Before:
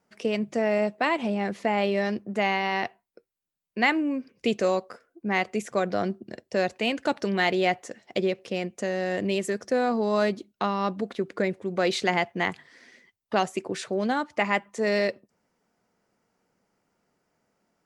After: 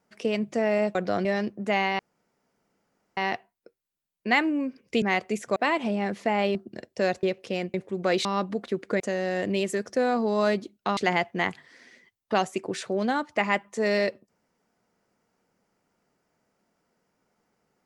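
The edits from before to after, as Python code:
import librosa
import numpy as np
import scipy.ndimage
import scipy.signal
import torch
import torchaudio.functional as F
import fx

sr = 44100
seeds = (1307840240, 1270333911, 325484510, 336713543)

y = fx.edit(x, sr, fx.swap(start_s=0.95, length_s=0.99, other_s=5.8, other_length_s=0.3),
    fx.insert_room_tone(at_s=2.68, length_s=1.18),
    fx.cut(start_s=4.53, length_s=0.73),
    fx.cut(start_s=6.78, length_s=1.46),
    fx.swap(start_s=8.75, length_s=1.97, other_s=11.47, other_length_s=0.51), tone=tone)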